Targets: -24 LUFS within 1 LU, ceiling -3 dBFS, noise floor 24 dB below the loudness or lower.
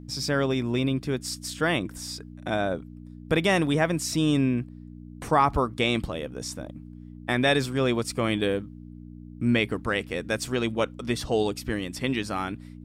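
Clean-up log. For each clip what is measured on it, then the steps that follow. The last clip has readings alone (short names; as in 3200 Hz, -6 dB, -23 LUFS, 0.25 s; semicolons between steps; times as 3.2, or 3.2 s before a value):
hum 60 Hz; harmonics up to 300 Hz; hum level -39 dBFS; loudness -26.5 LUFS; peak -9.0 dBFS; loudness target -24.0 LUFS
-> de-hum 60 Hz, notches 5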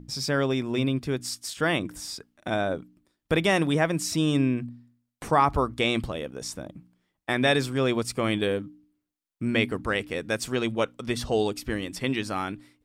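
hum none; loudness -27.0 LUFS; peak -9.5 dBFS; loudness target -24.0 LUFS
-> gain +3 dB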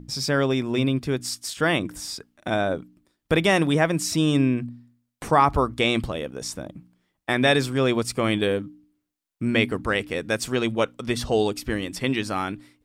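loudness -24.0 LUFS; peak -6.5 dBFS; noise floor -78 dBFS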